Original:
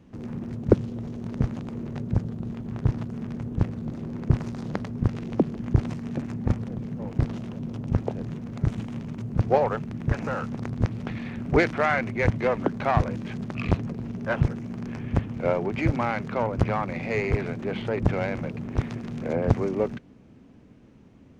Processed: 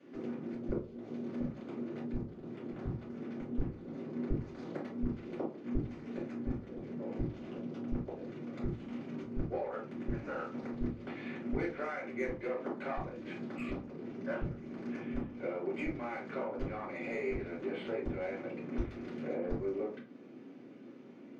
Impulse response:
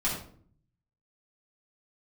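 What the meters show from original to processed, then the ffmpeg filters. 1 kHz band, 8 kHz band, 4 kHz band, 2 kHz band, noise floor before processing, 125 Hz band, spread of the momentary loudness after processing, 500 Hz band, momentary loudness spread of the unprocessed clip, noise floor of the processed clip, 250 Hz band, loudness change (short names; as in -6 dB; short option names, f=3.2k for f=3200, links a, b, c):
-14.5 dB, n/a, -13.0 dB, -13.0 dB, -52 dBFS, -17.5 dB, 6 LU, -10.5 dB, 10 LU, -51 dBFS, -9.5 dB, -12.0 dB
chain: -filter_complex "[0:a]lowpass=4.7k,acompressor=threshold=-36dB:ratio=10,acrossover=split=210|1500[a][b][c];[a]acrusher=bits=4:mix=0:aa=0.5[d];[c]asoftclip=type=tanh:threshold=-39.5dB[e];[d][b][e]amix=inputs=3:normalize=0[f];[1:a]atrim=start_sample=2205,asetrate=83790,aresample=44100[g];[f][g]afir=irnorm=-1:irlink=0,volume=-1.5dB"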